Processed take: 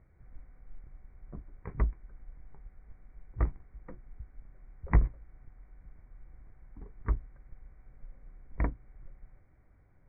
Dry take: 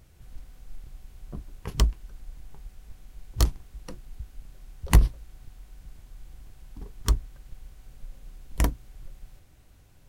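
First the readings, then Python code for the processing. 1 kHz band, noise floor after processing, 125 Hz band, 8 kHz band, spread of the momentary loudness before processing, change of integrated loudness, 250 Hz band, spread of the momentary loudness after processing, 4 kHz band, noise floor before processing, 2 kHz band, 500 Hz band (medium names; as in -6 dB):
-6.0 dB, -61 dBFS, -6.5 dB, under -40 dB, 24 LU, -7.0 dB, -6.0 dB, 24 LU, under -40 dB, -55 dBFS, -6.5 dB, -5.5 dB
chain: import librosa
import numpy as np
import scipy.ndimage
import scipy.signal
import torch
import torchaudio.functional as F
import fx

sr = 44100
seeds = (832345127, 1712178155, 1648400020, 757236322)

y = scipy.signal.sosfilt(scipy.signal.cheby1(8, 1.0, 2300.0, 'lowpass', fs=sr, output='sos'), x)
y = F.gain(torch.from_numpy(y), -5.5).numpy()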